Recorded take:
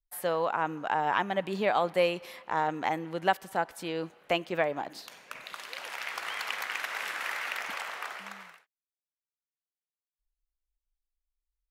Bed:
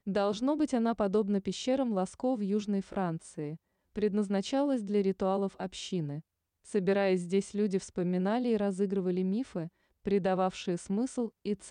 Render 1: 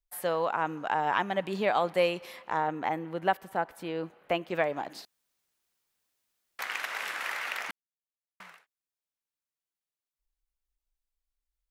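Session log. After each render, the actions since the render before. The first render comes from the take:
0:02.57–0:04.50: parametric band 6,500 Hz −9.5 dB 2.1 octaves
0:05.05–0:06.59: fill with room tone
0:07.71–0:08.40: silence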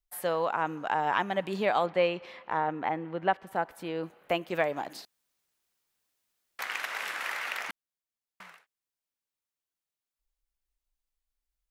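0:01.86–0:03.47: low-pass filter 3,600 Hz
0:04.03–0:04.97: high-shelf EQ 6,800 Hz +7.5 dB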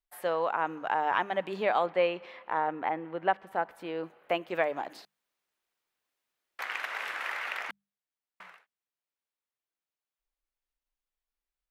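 bass and treble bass −8 dB, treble −9 dB
mains-hum notches 50/100/150/200 Hz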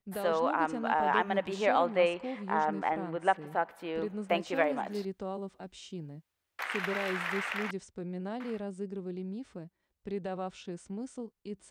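mix in bed −8 dB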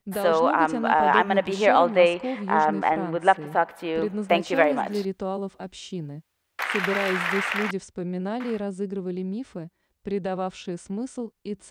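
level +8.5 dB

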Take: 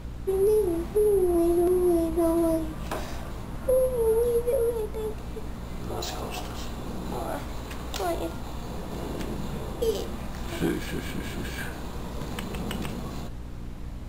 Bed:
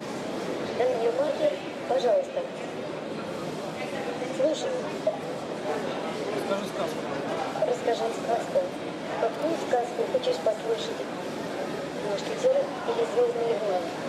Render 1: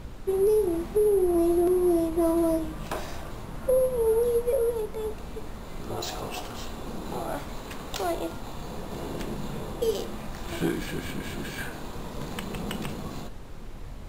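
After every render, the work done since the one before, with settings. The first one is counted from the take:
hum removal 60 Hz, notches 5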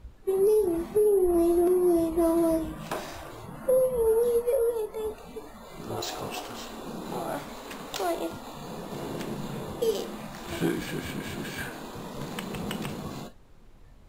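noise reduction from a noise print 13 dB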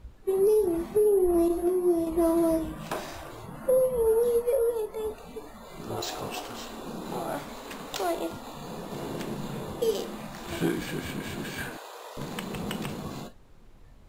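0:01.48–0:02.07: micro pitch shift up and down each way 24 cents
0:11.77–0:12.17: Butterworth high-pass 450 Hz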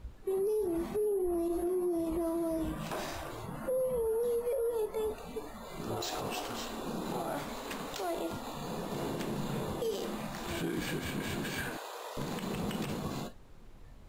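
downward compressor, threshold −24 dBFS, peak gain reduction 5.5 dB
brickwall limiter −26.5 dBFS, peak gain reduction 9.5 dB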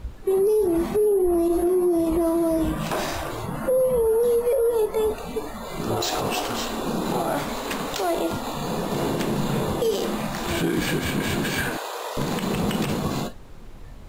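level +11.5 dB

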